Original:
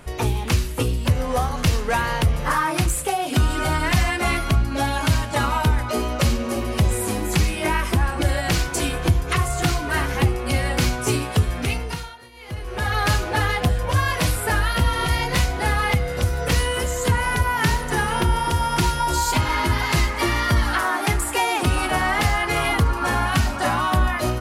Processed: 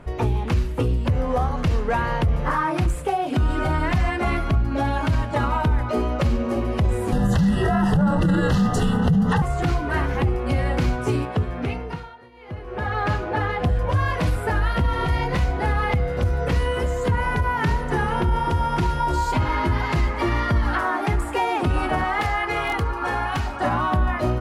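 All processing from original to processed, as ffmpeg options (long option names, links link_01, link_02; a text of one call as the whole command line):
ffmpeg -i in.wav -filter_complex "[0:a]asettb=1/sr,asplit=3[link_01][link_02][link_03];[link_01]atrim=end=7.124[link_04];[link_02]atrim=start=7.12:end=9.42,asetpts=PTS-STARTPTS,afade=type=in:duration=0.004:curve=qsin,afade=type=out:start_time=2.296:duration=0.004:curve=qsin,afreqshift=-250,acontrast=81,asuperstop=centerf=2300:order=8:qfactor=3.5[link_05];[link_03]atrim=start=9.416[link_06];[link_04][link_05]acrossfade=duration=0.004:curve1=hsin:curve2=qsin[link_07];[link_07][link_06]acrossfade=duration=0.004:curve1=qsin:curve2=hsin,asettb=1/sr,asplit=3[link_08][link_09][link_10];[link_08]atrim=end=11.254[link_11];[link_09]atrim=start=11.25:end=13.6,asetpts=PTS-STARTPTS,afade=type=in:duration=0.004:curve=qsin,afade=type=out:start_time=2.346:duration=0.004:curve=qsin,highpass=frequency=130:poles=1,highshelf=frequency=4500:gain=-9[link_12];[link_10]atrim=start=13.596[link_13];[link_11][link_12]acrossfade=duration=0.004:curve1=hsin:curve2=qsin[link_14];[link_14][link_13]acrossfade=duration=0.004:curve1=qsin:curve2=hsin,asettb=1/sr,asplit=3[link_15][link_16][link_17];[link_15]atrim=end=22.044[link_18];[link_16]atrim=start=22.04:end=23.61,asetpts=PTS-STARTPTS,afade=type=in:duration=0.004:curve=qsin,afade=type=out:start_time=1.566:duration=0.004:curve=qsin,lowshelf=frequency=390:gain=-9.5,aecho=1:1:2.4:0.35,atrim=end_sample=69237,aeval=exprs='(mod(3.55*val(0)+1,2)-1)/3.55':channel_layout=same[link_19];[link_17]atrim=start=23.606[link_20];[link_18][link_19]acrossfade=duration=0.004:curve1=hsin:curve2=qsin[link_21];[link_21][link_20]acrossfade=duration=0.004:curve1=qsin:curve2=hsin,lowpass=frequency=1100:poles=1,alimiter=limit=-14.5dB:level=0:latency=1:release=29,volume=2dB" out.wav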